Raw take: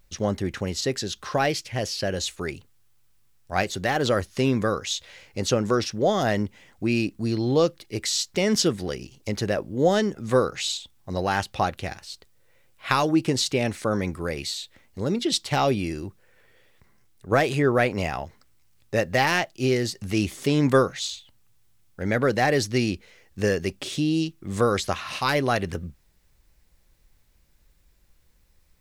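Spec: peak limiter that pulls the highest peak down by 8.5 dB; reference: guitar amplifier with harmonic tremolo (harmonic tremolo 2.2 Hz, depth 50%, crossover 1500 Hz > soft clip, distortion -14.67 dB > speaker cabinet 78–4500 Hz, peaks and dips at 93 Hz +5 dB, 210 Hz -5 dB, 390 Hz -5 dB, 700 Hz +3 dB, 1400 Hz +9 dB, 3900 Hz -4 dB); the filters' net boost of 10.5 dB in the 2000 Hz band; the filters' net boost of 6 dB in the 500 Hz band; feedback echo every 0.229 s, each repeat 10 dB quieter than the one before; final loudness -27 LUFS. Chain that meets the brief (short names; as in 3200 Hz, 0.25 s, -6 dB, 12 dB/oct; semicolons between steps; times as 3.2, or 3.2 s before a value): bell 500 Hz +7.5 dB; bell 2000 Hz +9 dB; limiter -6 dBFS; feedback echo 0.229 s, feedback 32%, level -10 dB; harmonic tremolo 2.2 Hz, depth 50%, crossover 1500 Hz; soft clip -14 dBFS; speaker cabinet 78–4500 Hz, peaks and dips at 93 Hz +5 dB, 210 Hz -5 dB, 390 Hz -5 dB, 700 Hz +3 dB, 1400 Hz +9 dB, 3900 Hz -4 dB; gain -2.5 dB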